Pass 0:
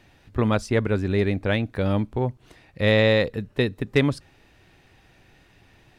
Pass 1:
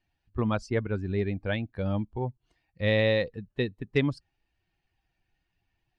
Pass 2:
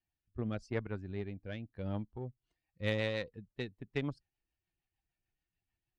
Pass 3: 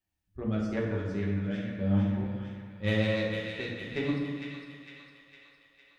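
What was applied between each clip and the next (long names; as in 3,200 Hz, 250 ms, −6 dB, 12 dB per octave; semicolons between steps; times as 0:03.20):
spectral dynamics exaggerated over time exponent 1.5; low-pass filter 5,500 Hz 12 dB per octave; level −4 dB
rotating-speaker cabinet horn 0.85 Hz, later 6.7 Hz, at 0:02.00; harmonic generator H 3 −23 dB, 7 −30 dB, 8 −35 dB, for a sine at −10 dBFS; level −5.5 dB
delay with a high-pass on its return 456 ms, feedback 57%, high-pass 1,500 Hz, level −5 dB; convolution reverb RT60 1.7 s, pre-delay 5 ms, DRR −4.5 dB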